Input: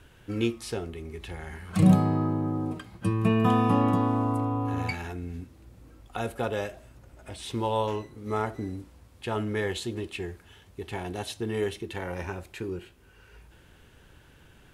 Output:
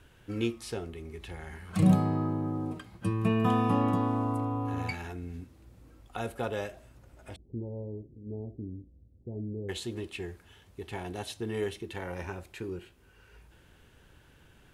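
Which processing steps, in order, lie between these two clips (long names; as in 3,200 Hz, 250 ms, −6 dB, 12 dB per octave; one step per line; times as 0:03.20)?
0:07.36–0:09.69: Gaussian smoothing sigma 21 samples
level −3.5 dB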